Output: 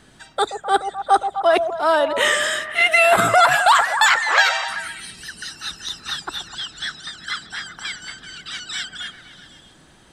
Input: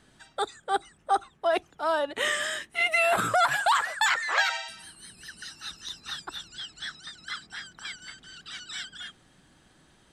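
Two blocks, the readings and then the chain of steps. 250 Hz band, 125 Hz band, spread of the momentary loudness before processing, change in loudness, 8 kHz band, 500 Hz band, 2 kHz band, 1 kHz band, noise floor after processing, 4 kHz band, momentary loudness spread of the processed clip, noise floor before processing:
+9.0 dB, +9.0 dB, 19 LU, +9.5 dB, +9.0 dB, +10.0 dB, +9.5 dB, +9.5 dB, -51 dBFS, +9.0 dB, 19 LU, -62 dBFS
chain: delay with a stepping band-pass 0.127 s, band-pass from 580 Hz, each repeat 0.7 oct, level -7 dB; gain +9 dB

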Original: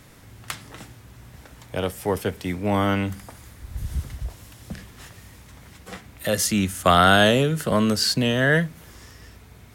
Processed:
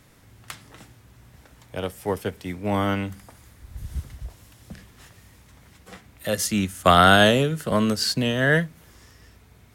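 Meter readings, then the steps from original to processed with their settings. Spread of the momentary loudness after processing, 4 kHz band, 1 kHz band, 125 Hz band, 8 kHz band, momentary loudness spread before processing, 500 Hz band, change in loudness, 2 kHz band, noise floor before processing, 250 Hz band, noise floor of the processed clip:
21 LU, -0.5 dB, +0.5 dB, -1.5 dB, -2.5 dB, 23 LU, -0.5 dB, +0.5 dB, 0.0 dB, -48 dBFS, -1.0 dB, -54 dBFS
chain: upward expander 1.5:1, over -28 dBFS; gain +1.5 dB

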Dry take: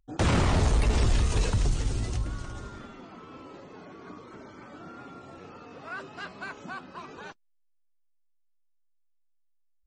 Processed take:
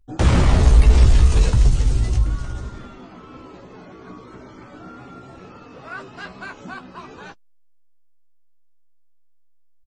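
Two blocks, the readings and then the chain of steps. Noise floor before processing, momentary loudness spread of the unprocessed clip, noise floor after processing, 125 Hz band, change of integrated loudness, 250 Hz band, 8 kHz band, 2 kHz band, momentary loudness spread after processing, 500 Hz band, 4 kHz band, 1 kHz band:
-68 dBFS, 22 LU, -51 dBFS, +10.0 dB, +11.5 dB, +6.0 dB, +4.0 dB, +4.0 dB, 21 LU, +4.5 dB, +4.0 dB, +4.0 dB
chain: low shelf 100 Hz +10.5 dB; doubler 16 ms -6.5 dB; gain +3 dB

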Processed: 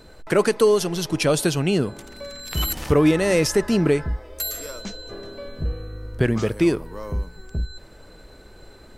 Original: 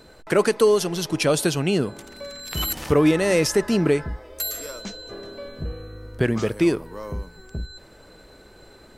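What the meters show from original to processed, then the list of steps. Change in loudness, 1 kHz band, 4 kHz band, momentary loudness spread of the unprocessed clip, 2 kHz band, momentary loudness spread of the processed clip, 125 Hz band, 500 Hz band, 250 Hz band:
0.0 dB, 0.0 dB, 0.0 dB, 18 LU, 0.0 dB, 17 LU, +2.5 dB, +0.5 dB, +1.0 dB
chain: low shelf 78 Hz +9 dB

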